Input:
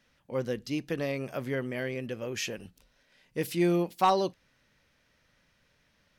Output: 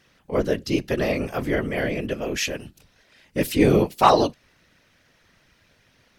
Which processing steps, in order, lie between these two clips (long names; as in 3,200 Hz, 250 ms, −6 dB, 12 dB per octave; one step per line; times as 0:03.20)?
random phases in short frames
level +8.5 dB